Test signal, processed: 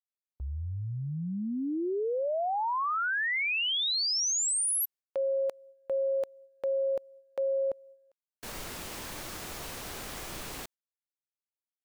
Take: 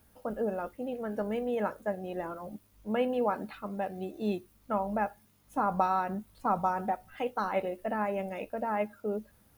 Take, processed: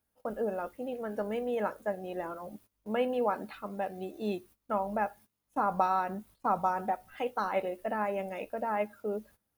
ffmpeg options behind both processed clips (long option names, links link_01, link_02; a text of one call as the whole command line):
ffmpeg -i in.wav -af "agate=range=-17dB:threshold=-52dB:ratio=16:detection=peak,bass=frequency=250:gain=-5,treble=frequency=4000:gain=1" out.wav